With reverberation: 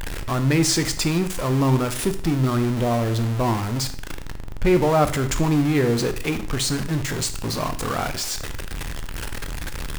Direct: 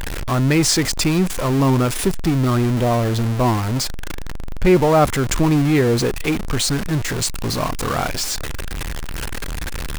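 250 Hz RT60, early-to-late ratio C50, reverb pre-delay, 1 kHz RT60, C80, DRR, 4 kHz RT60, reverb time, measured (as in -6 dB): 0.55 s, 12.5 dB, 6 ms, 0.55 s, 16.0 dB, 9.0 dB, 0.50 s, 0.55 s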